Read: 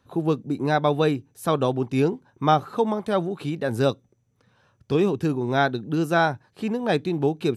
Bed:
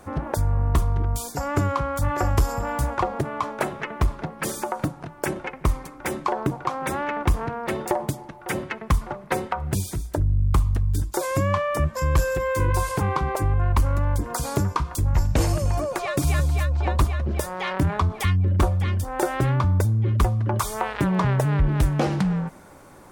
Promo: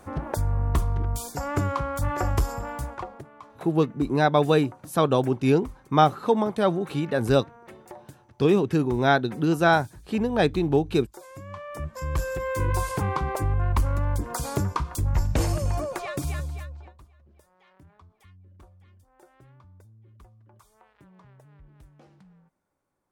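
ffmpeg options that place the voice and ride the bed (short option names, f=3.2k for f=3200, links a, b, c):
-filter_complex "[0:a]adelay=3500,volume=1dB[a];[1:a]volume=13.5dB,afade=t=out:st=2.31:d=0.97:silence=0.149624,afade=t=in:st=11.45:d=1.28:silence=0.149624,afade=t=out:st=15.74:d=1.2:silence=0.0334965[b];[a][b]amix=inputs=2:normalize=0"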